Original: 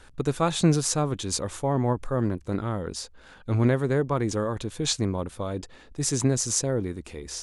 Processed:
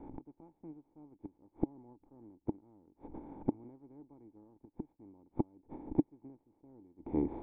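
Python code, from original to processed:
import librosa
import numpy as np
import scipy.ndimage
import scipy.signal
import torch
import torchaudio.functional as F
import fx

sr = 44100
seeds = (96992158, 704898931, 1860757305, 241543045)

y = fx.spec_flatten(x, sr, power=0.43)
y = fx.gate_flip(y, sr, shuts_db=-20.0, range_db=-38)
y = fx.formant_cascade(y, sr, vowel='u')
y = y * librosa.db_to_amplitude(17.0)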